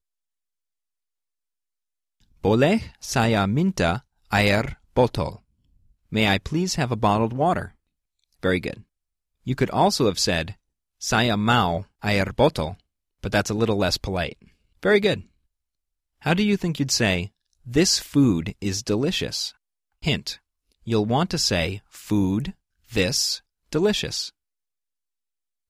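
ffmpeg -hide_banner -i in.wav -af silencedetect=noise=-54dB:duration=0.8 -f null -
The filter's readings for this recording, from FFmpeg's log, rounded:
silence_start: 0.00
silence_end: 2.20 | silence_duration: 2.20
silence_start: 15.27
silence_end: 16.21 | silence_duration: 0.95
silence_start: 24.31
silence_end: 25.69 | silence_duration: 1.39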